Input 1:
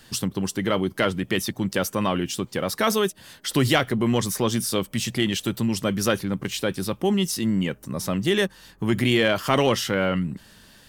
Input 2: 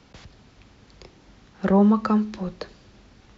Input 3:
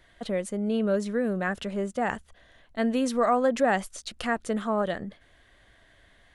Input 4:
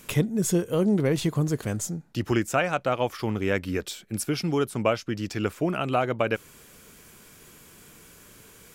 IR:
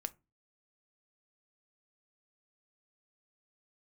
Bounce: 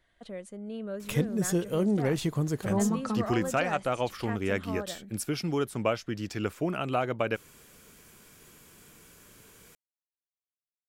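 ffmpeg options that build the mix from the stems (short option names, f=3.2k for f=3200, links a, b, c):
-filter_complex "[1:a]adelay=1000,volume=-10.5dB[a];[2:a]volume=-11.5dB[b];[3:a]adelay=1000,volume=-4dB[c];[a][b][c]amix=inputs=3:normalize=0"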